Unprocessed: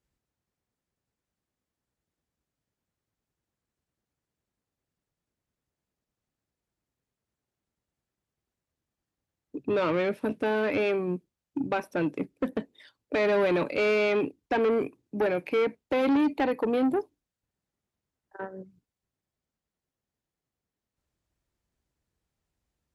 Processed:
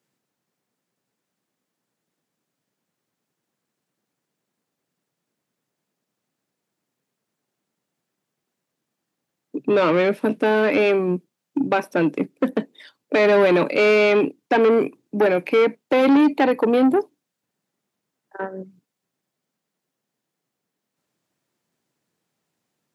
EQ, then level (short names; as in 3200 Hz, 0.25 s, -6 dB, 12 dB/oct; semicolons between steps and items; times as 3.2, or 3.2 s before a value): HPF 150 Hz 24 dB/oct; +8.5 dB